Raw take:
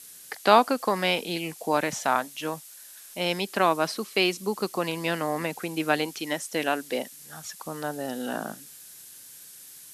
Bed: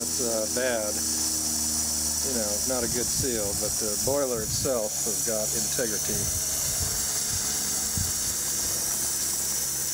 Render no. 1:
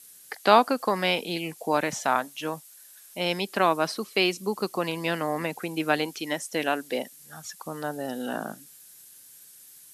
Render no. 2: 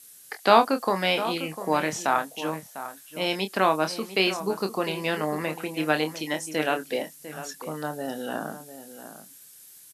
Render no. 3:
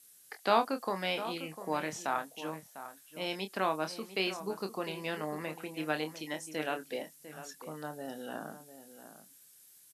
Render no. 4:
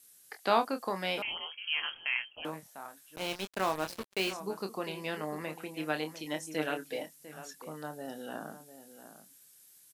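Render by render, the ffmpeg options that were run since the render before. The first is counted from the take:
-af "afftdn=nr=6:nf=-47"
-filter_complex "[0:a]asplit=2[a][b];[b]adelay=26,volume=-8dB[c];[a][c]amix=inputs=2:normalize=0,asplit=2[d][e];[e]adelay=699.7,volume=-12dB,highshelf=f=4k:g=-15.7[f];[d][f]amix=inputs=2:normalize=0"
-af "volume=-9.5dB"
-filter_complex "[0:a]asettb=1/sr,asplit=3[a][b][c];[a]atrim=end=1.224[d];[b]atrim=start=1.22:end=2.45,asetpts=PTS-STARTPTS,afade=t=in:d=0.004:c=qsin,afade=t=out:st=1.226:d=0.004:c=qsin,lowpass=f=2.9k:t=q:w=0.5098,lowpass=f=2.9k:t=q:w=0.6013,lowpass=f=2.9k:t=q:w=0.9,lowpass=f=2.9k:t=q:w=2.563,afreqshift=-3400[e];[c]atrim=start=2.446[f];[d][e]acrossfade=d=0.004:c1=hsin:c2=qsin[g];[g][f]acrossfade=d=0.004:c1=qsin:c2=hsin,asettb=1/sr,asplit=3[h][i][j];[h]atrim=end=3.164[k];[i]atrim=start=3.16:end=4.33,asetpts=PTS-STARTPTS,afade=t=in:d=0.004:c=qsin,afade=t=out:st=1.166:d=0.004:c=qsin,acrusher=bits=5:mix=0:aa=0.5[l];[j]atrim=start=4.326[m];[k][l]acrossfade=d=0.004:c1=hsin:c2=qsin[n];[n][m]acrossfade=d=0.004:c1=qsin:c2=hsin,asettb=1/sr,asplit=3[o][p][q];[o]atrim=end=6.254[r];[p]atrim=start=6.25:end=7.06,asetpts=PTS-STARTPTS,afade=t=in:d=0.004:c=qsin,afade=t=out:st=0.806:d=0.004:c=qsin,aecho=1:1:6.5:0.57,atrim=end_sample=35721[s];[q]atrim=start=7.056[t];[r][s]acrossfade=d=0.004:c1=hsin:c2=qsin[u];[u][t]acrossfade=d=0.004:c1=qsin:c2=hsin"

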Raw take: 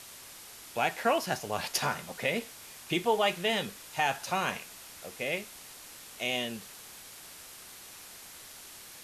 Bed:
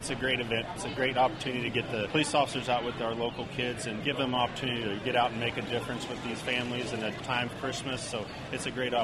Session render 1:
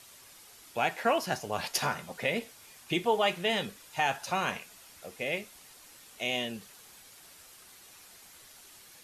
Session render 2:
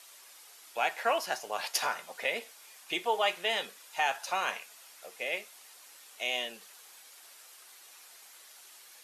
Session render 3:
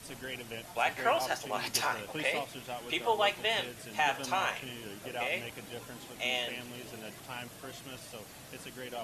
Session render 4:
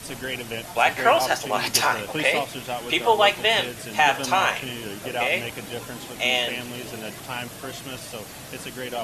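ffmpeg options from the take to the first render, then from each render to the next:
-af "afftdn=nr=7:nf=-49"
-af "highpass=550"
-filter_complex "[1:a]volume=-12dB[a];[0:a][a]amix=inputs=2:normalize=0"
-af "volume=10.5dB"

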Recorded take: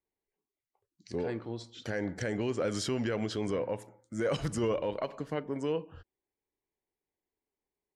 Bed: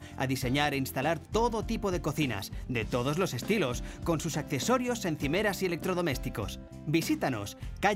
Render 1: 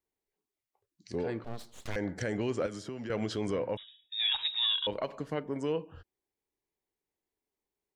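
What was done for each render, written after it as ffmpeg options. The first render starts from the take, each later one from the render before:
-filter_complex "[0:a]asettb=1/sr,asplit=3[a][b][c];[a]atrim=end=1.444[d];[b]atrim=start=1.44:end=1.96,asetpts=PTS-STARTPTS,afade=t=in:d=0.004:c=qsin,afade=t=out:st=0.516:d=0.004:c=qsin,aeval=exprs='abs(val(0))':c=same[e];[c]atrim=start=1.956[f];[d][e]acrossfade=d=0.004:c1=hsin:c2=qsin[g];[g][f]acrossfade=d=0.004:c1=qsin:c2=hsin,asettb=1/sr,asplit=3[h][i][j];[h]atrim=end=2.664[k];[i]atrim=start=2.66:end=3.1,asetpts=PTS-STARTPTS,afade=t=in:d=0.004:c=qsin,afade=t=out:st=0.436:d=0.004:c=qsin,acrossover=split=140|1300[l][m][n];[l]acompressor=threshold=-54dB:ratio=4[o];[m]acompressor=threshold=-39dB:ratio=4[p];[n]acompressor=threshold=-51dB:ratio=4[q];[o][p][q]amix=inputs=3:normalize=0[r];[j]atrim=start=3.096[s];[k][r]acrossfade=d=0.004:c1=hsin:c2=qsin[t];[t][s]acrossfade=d=0.004:c1=qsin:c2=hsin,asettb=1/sr,asplit=3[u][v][w];[u]atrim=end=3.774[x];[v]atrim=start=3.77:end=4.87,asetpts=PTS-STARTPTS,afade=t=in:d=0.004:c=qsin,afade=t=out:st=1.096:d=0.004:c=qsin,lowpass=f=3.3k:t=q:w=0.5098,lowpass=f=3.3k:t=q:w=0.6013,lowpass=f=3.3k:t=q:w=0.9,lowpass=f=3.3k:t=q:w=2.563,afreqshift=-3900[y];[w]atrim=start=4.866[z];[x][y]acrossfade=d=0.004:c1=hsin:c2=qsin[aa];[aa][z]acrossfade=d=0.004:c1=qsin:c2=hsin"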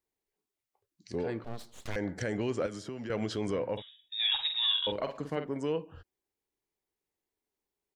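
-filter_complex "[0:a]asplit=3[a][b][c];[a]afade=t=out:st=3.76:d=0.02[d];[b]asplit=2[e][f];[f]adelay=49,volume=-7.5dB[g];[e][g]amix=inputs=2:normalize=0,afade=t=in:st=3.76:d=0.02,afade=t=out:st=5.51:d=0.02[h];[c]afade=t=in:st=5.51:d=0.02[i];[d][h][i]amix=inputs=3:normalize=0"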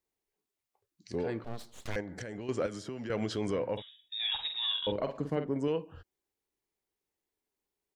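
-filter_complex "[0:a]asettb=1/sr,asplit=3[a][b][c];[a]atrim=end=2.004[d];[b]atrim=start=2:end=2.49,asetpts=PTS-STARTPTS,afade=t=in:d=0.004:c=qsin,afade=t=out:st=0.486:d=0.004:c=qsin,acompressor=threshold=-37dB:ratio=6:attack=3.2:release=140:knee=1:detection=peak[e];[c]atrim=start=2.486[f];[d][e]acrossfade=d=0.004:c1=hsin:c2=qsin[g];[g][f]acrossfade=d=0.004:c1=qsin:c2=hsin,asettb=1/sr,asplit=3[h][i][j];[h]atrim=end=4.184[k];[i]atrim=start=4.18:end=5.68,asetpts=PTS-STARTPTS,afade=t=in:d=0.004:c=qsin,afade=t=out:st=1.496:d=0.004:c=qsin,tiltshelf=f=690:g=4.5[l];[j]atrim=start=5.676[m];[k][l]acrossfade=d=0.004:c1=hsin:c2=qsin[n];[n][m]acrossfade=d=0.004:c1=qsin:c2=hsin"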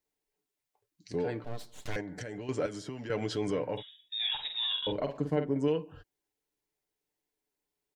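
-af "bandreject=f=1.2k:w=13,aecho=1:1:6.8:0.45"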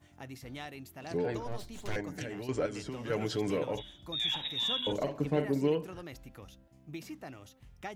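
-filter_complex "[1:a]volume=-15.5dB[a];[0:a][a]amix=inputs=2:normalize=0"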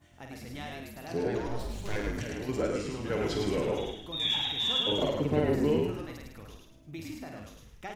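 -filter_complex "[0:a]asplit=2[a][b];[b]adelay=49,volume=-5.5dB[c];[a][c]amix=inputs=2:normalize=0,asplit=6[d][e][f][g][h][i];[e]adelay=106,afreqshift=-50,volume=-3dB[j];[f]adelay=212,afreqshift=-100,volume=-11.6dB[k];[g]adelay=318,afreqshift=-150,volume=-20.3dB[l];[h]adelay=424,afreqshift=-200,volume=-28.9dB[m];[i]adelay=530,afreqshift=-250,volume=-37.5dB[n];[d][j][k][l][m][n]amix=inputs=6:normalize=0"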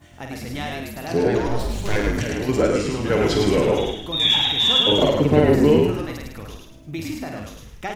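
-af "volume=11.5dB"

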